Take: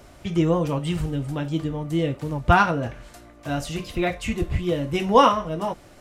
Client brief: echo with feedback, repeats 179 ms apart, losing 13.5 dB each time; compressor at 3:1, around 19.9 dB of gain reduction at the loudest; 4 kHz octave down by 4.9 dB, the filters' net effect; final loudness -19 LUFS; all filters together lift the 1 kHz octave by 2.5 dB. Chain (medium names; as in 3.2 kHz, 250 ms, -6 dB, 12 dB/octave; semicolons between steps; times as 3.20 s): peaking EQ 1 kHz +3.5 dB; peaking EQ 4 kHz -8.5 dB; compression 3:1, threshold -37 dBFS; feedback delay 179 ms, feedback 21%, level -13.5 dB; trim +18 dB